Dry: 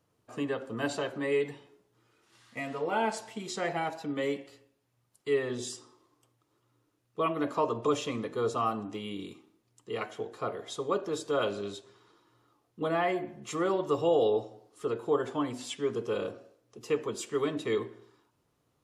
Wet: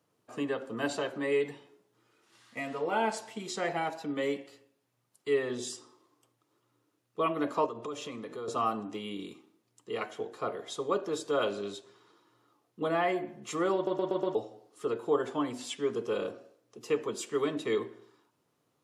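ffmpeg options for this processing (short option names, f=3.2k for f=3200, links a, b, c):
-filter_complex "[0:a]asettb=1/sr,asplit=3[a][b][c];[a]atrim=end=7.664[d];[b]atrim=start=7.66:end=8.48,asetpts=PTS-STARTPTS,afade=t=in:d=0.004:c=qsin,afade=t=out:st=0.816:d=0.004:c=qsin,acompressor=threshold=-38dB:ratio=3:attack=3.2:release=140:knee=1:detection=peak[e];[c]atrim=start=8.476[f];[d][e]acrossfade=d=0.004:c1=hsin:c2=qsin[g];[g][f]acrossfade=d=0.004:c1=qsin:c2=hsin,asplit=6[h][i][j][k][l][m];[h]atrim=end=13.872[n];[i]atrim=start=13.748:end=13.872[o];[j]atrim=start=13.748:end=13.872[p];[k]atrim=start=13.748:end=13.872[q];[l]atrim=start=13.748:end=13.872[r];[m]atrim=start=14.348[s];[n][o]acrossfade=d=0.004:c1=hsin:c2=hsin[t];[t][p]acrossfade=d=0.004:c1=hsin:c2=hsin[u];[u][q]acrossfade=d=0.004:c1=hsin:c2=hsin[v];[v][r]acrossfade=d=0.004:c1=hsin:c2=hsin[w];[w][s]acrossfade=d=0.004:c1=hsin:c2=hsin,highpass=150"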